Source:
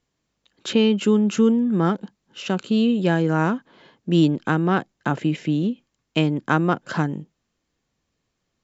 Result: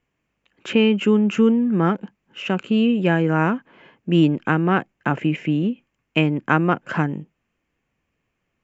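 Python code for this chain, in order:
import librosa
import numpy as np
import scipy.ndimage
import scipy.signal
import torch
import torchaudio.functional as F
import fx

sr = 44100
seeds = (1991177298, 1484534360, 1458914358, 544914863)

y = fx.high_shelf_res(x, sr, hz=3200.0, db=-7.0, q=3.0)
y = y * 10.0 ** (1.0 / 20.0)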